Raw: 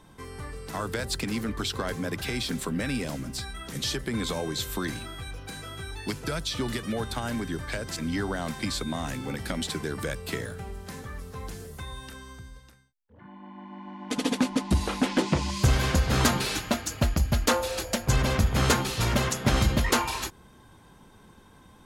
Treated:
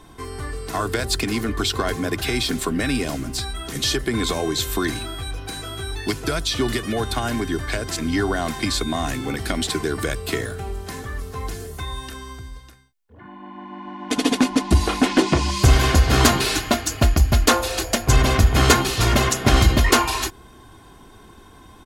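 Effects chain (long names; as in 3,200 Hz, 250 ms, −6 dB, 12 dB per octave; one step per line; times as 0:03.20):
comb filter 2.8 ms, depth 45%
level +7 dB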